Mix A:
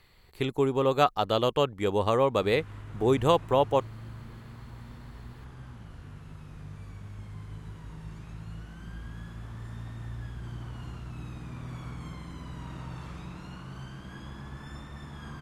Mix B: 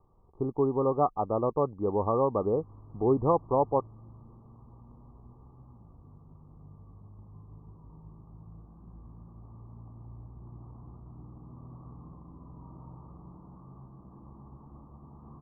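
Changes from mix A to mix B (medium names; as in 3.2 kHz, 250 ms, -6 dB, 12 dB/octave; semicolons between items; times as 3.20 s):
background -5.5 dB; master: add rippled Chebyshev low-pass 1.2 kHz, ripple 3 dB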